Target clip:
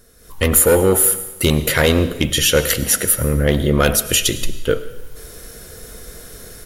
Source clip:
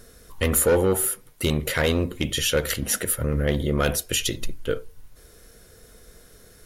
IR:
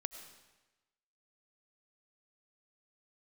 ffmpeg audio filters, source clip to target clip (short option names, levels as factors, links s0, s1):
-filter_complex "[0:a]dynaudnorm=f=170:g=3:m=6.31,asplit=2[s0][s1];[1:a]atrim=start_sample=2205,highshelf=f=8400:g=8.5[s2];[s1][s2]afir=irnorm=-1:irlink=0,volume=1.26[s3];[s0][s3]amix=inputs=2:normalize=0,volume=0.335"